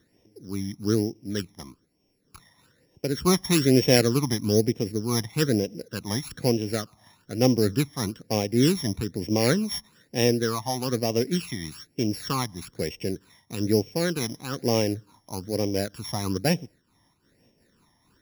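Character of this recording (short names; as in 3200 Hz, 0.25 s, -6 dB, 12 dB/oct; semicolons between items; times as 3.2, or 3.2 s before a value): a buzz of ramps at a fixed pitch in blocks of 8 samples; phasing stages 12, 1.1 Hz, lowest notch 450–1400 Hz; noise-modulated level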